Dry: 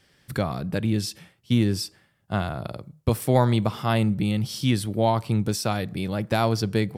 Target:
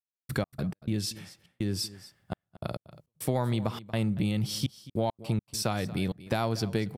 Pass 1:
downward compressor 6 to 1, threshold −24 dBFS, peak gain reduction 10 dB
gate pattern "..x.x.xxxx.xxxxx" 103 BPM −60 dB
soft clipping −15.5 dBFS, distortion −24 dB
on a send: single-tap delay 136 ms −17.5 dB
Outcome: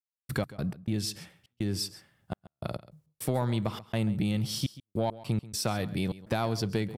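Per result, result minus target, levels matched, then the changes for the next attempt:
soft clipping: distortion +13 dB; echo 98 ms early
change: soft clipping −8 dBFS, distortion −38 dB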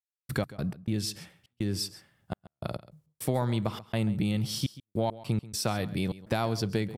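echo 98 ms early
change: single-tap delay 234 ms −17.5 dB

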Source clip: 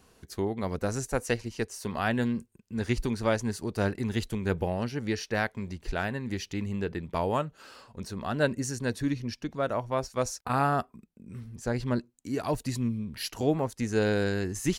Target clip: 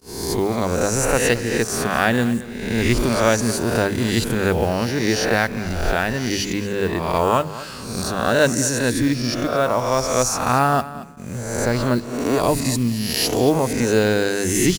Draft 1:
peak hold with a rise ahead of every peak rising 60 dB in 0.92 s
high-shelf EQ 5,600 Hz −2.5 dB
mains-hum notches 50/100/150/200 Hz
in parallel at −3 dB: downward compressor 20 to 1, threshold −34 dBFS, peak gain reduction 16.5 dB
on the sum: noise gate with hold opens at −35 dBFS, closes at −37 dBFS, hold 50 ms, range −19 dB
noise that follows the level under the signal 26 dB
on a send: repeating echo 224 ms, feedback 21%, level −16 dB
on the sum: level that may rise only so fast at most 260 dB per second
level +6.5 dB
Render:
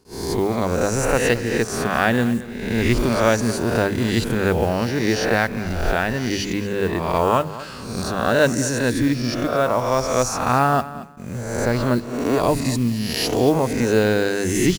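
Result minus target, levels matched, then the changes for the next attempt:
8,000 Hz band −4.0 dB
change: high-shelf EQ 5,600 Hz +5.5 dB

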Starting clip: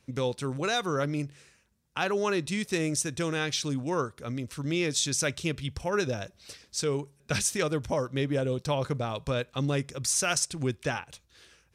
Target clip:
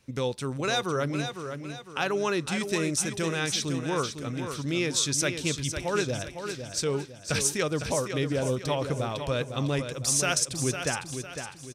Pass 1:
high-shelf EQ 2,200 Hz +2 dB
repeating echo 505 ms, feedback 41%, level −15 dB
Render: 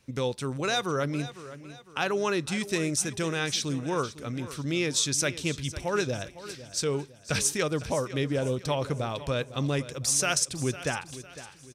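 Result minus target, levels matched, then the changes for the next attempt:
echo-to-direct −7 dB
change: repeating echo 505 ms, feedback 41%, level −8 dB

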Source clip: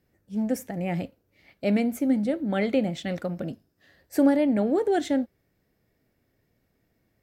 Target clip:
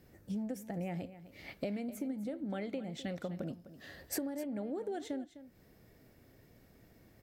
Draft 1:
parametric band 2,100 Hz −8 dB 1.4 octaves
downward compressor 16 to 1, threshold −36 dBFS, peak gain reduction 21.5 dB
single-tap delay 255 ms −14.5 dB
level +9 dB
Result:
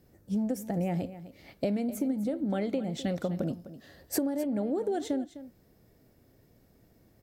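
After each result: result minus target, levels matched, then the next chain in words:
downward compressor: peak gain reduction −8.5 dB; 2,000 Hz band −6.0 dB
parametric band 2,100 Hz −8 dB 1.4 octaves
downward compressor 16 to 1, threshold −45 dBFS, peak gain reduction 29.5 dB
single-tap delay 255 ms −14.5 dB
level +9 dB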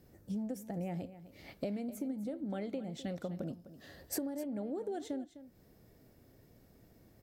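2,000 Hz band −5.0 dB
parametric band 2,100 Hz −2 dB 1.4 octaves
downward compressor 16 to 1, threshold −45 dBFS, peak gain reduction 30 dB
single-tap delay 255 ms −14.5 dB
level +9 dB

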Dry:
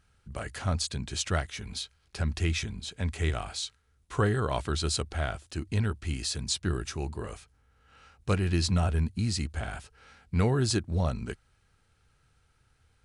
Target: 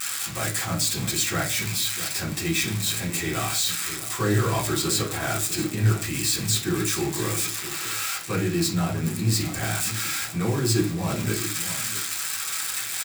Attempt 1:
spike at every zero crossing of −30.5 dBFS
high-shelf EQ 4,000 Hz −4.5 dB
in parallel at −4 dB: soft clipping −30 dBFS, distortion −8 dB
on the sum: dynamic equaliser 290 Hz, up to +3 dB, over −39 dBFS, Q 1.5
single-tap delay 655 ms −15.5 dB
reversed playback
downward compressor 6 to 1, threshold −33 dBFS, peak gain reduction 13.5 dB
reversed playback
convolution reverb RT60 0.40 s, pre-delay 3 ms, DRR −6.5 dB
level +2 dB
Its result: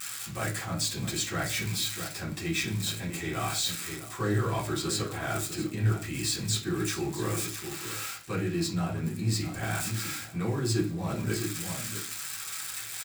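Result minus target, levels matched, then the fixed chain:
spike at every zero crossing: distortion −10 dB; downward compressor: peak gain reduction +5.5 dB
spike at every zero crossing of −20 dBFS
high-shelf EQ 4,000 Hz −4.5 dB
in parallel at −4 dB: soft clipping −30 dBFS, distortion −9 dB
on the sum: dynamic equaliser 290 Hz, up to +3 dB, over −39 dBFS, Q 1.5
single-tap delay 655 ms −15.5 dB
reversed playback
downward compressor 6 to 1, threshold −26.5 dBFS, peak gain reduction 8.5 dB
reversed playback
convolution reverb RT60 0.40 s, pre-delay 3 ms, DRR −6.5 dB
level +2 dB

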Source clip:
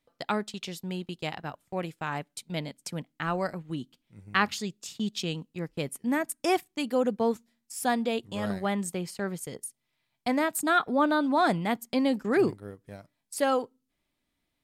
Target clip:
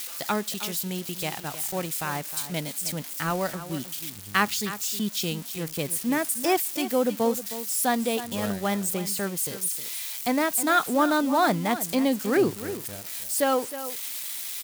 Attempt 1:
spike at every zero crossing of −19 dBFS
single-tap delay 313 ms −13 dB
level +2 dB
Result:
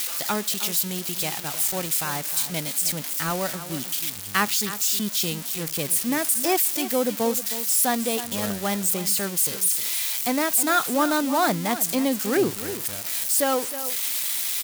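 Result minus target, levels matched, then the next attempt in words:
spike at every zero crossing: distortion +7 dB
spike at every zero crossing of −26.5 dBFS
single-tap delay 313 ms −13 dB
level +2 dB

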